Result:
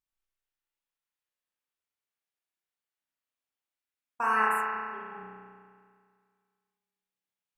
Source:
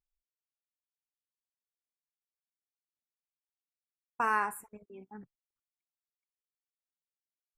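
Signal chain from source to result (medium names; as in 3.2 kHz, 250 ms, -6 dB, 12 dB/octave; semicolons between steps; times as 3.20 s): wow and flutter 55 cents; bass shelf 500 Hz -7 dB; spring tank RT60 2 s, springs 32 ms, chirp 60 ms, DRR -6 dB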